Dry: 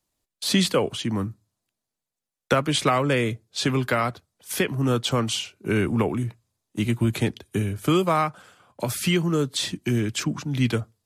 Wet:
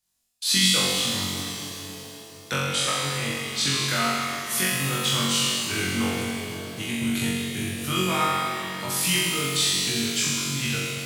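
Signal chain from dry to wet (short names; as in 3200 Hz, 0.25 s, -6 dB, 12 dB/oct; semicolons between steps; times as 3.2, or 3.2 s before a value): passive tone stack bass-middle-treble 5-5-5; 2.56–3.23 level quantiser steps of 11 dB; on a send: flutter echo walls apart 3.7 m, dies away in 1.2 s; on the sum: shimmer reverb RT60 3.4 s, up +7 st, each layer -8 dB, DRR 2.5 dB; gain +5.5 dB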